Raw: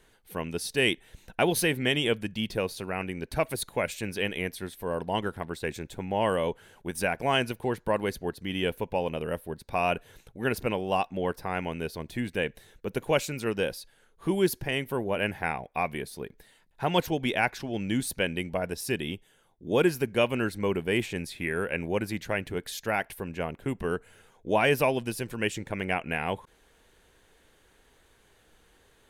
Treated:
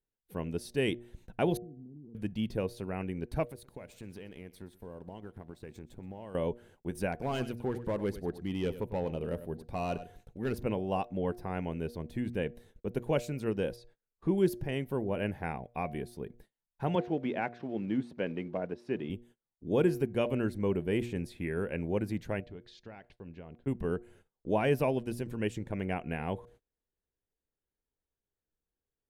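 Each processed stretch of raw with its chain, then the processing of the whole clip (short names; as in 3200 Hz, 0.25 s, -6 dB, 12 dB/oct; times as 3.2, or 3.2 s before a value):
1.57–2.15 ladder low-pass 300 Hz, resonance 40% + compressor 5:1, threshold -46 dBFS
3.45–6.35 G.711 law mismatch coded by A + compressor 4:1, threshold -39 dBFS + echo 0.126 s -19.5 dB
7.12–10.55 overloaded stage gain 23 dB + echo 98 ms -13.5 dB
13.76–14.38 LPF 6100 Hz + notch 3000 Hz, Q 7.9
16.95–19.1 block floating point 5-bit + BPF 190–2500 Hz
22.4–23.67 compressor 10:1, threshold -29 dBFS + ladder low-pass 5300 Hz, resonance 40%
whole clip: de-hum 119.3 Hz, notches 6; gate -53 dBFS, range -28 dB; tilt shelf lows +6.5 dB, about 730 Hz; gain -6 dB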